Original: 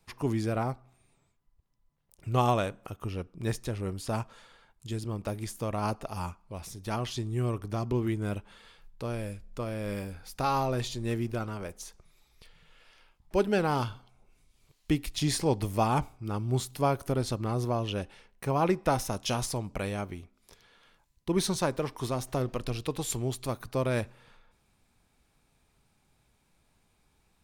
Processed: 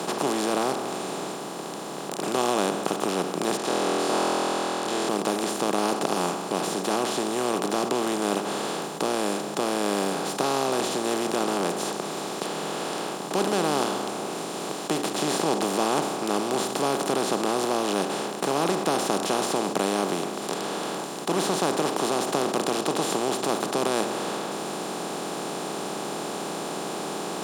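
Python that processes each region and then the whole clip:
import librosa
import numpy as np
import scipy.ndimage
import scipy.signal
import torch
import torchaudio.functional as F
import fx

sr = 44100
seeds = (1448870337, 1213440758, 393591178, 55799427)

y = fx.chain(x, sr, fx.bandpass_edges(low_hz=640.0, high_hz=3900.0),
    fx.room_flutter(wall_m=4.1, rt60_s=1.4), at=(3.57, 5.09))
y = fx.bin_compress(y, sr, power=0.2)
y = scipy.signal.sosfilt(scipy.signal.butter(6, 170.0, 'highpass', fs=sr, output='sos'), y)
y = y * 10.0 ** (-5.0 / 20.0)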